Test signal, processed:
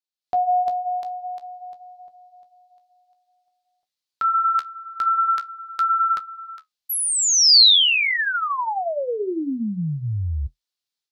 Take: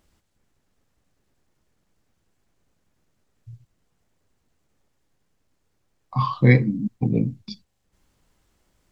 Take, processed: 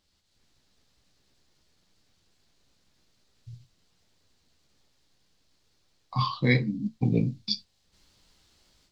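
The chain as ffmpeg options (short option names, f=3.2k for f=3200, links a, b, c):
-af "dynaudnorm=f=170:g=3:m=10.5dB,equalizer=f=4.3k:t=o:w=1.2:g=14.5,flanger=delay=9.8:depth=7.4:regen=-47:speed=0.49:shape=triangular,volume=-7dB"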